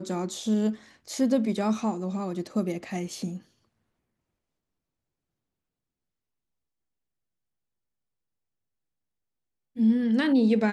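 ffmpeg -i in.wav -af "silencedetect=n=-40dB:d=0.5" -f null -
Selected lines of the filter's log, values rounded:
silence_start: 3.38
silence_end: 9.76 | silence_duration: 6.38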